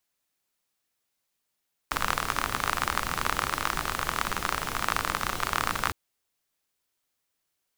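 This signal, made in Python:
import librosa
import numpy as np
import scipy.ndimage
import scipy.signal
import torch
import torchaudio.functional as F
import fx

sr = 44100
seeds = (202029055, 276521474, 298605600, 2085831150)

y = fx.rain(sr, seeds[0], length_s=4.01, drops_per_s=37.0, hz=1200.0, bed_db=-4.5)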